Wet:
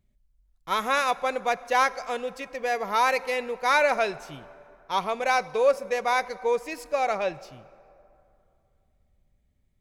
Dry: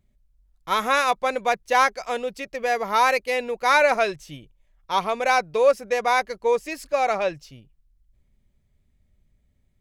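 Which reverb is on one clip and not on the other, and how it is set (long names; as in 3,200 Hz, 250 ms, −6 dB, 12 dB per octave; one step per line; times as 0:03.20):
dense smooth reverb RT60 2.7 s, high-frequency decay 0.55×, DRR 17 dB
level −3.5 dB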